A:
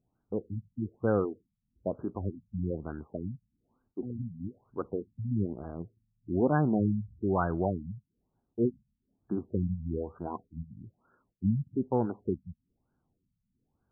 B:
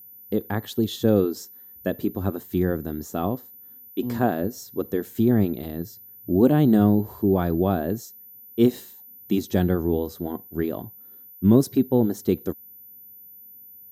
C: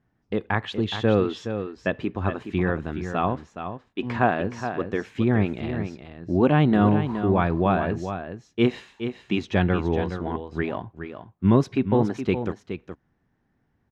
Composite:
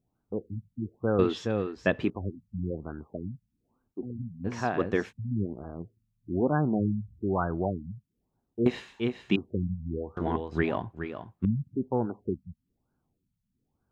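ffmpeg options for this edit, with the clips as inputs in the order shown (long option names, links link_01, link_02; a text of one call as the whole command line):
ffmpeg -i take0.wav -i take1.wav -i take2.wav -filter_complex "[2:a]asplit=4[link_01][link_02][link_03][link_04];[0:a]asplit=5[link_05][link_06][link_07][link_08][link_09];[link_05]atrim=end=1.192[link_10];[link_01]atrim=start=1.188:end=2.102[link_11];[link_06]atrim=start=2.098:end=4.48[link_12];[link_02]atrim=start=4.44:end=5.13[link_13];[link_07]atrim=start=5.09:end=8.662[link_14];[link_03]atrim=start=8.658:end=9.362[link_15];[link_08]atrim=start=9.358:end=10.172[link_16];[link_04]atrim=start=10.168:end=11.452[link_17];[link_09]atrim=start=11.448[link_18];[link_10][link_11]acrossfade=duration=0.004:curve1=hsin:curve2=hsin[link_19];[link_19][link_12]acrossfade=duration=0.004:curve1=hsin:curve2=hsin[link_20];[link_20][link_13]acrossfade=duration=0.04:curve1=tri:curve2=tri[link_21];[link_21][link_14]acrossfade=duration=0.04:curve1=tri:curve2=tri[link_22];[link_22][link_15]acrossfade=duration=0.004:curve1=hsin:curve2=hsin[link_23];[link_23][link_16]acrossfade=duration=0.004:curve1=hsin:curve2=hsin[link_24];[link_24][link_17]acrossfade=duration=0.004:curve1=hsin:curve2=hsin[link_25];[link_25][link_18]acrossfade=duration=0.004:curve1=hsin:curve2=hsin" out.wav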